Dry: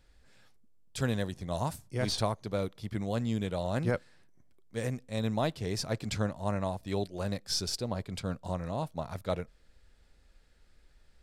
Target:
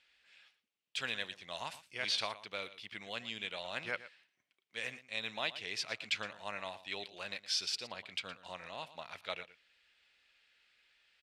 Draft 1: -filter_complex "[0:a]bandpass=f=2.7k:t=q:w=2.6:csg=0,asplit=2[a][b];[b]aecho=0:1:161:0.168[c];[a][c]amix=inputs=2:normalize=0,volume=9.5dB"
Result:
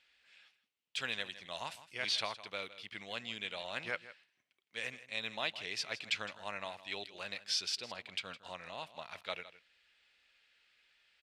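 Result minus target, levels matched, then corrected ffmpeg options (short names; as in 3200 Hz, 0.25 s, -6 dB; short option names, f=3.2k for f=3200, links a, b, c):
echo 46 ms late
-filter_complex "[0:a]bandpass=f=2.7k:t=q:w=2.6:csg=0,asplit=2[a][b];[b]aecho=0:1:115:0.168[c];[a][c]amix=inputs=2:normalize=0,volume=9.5dB"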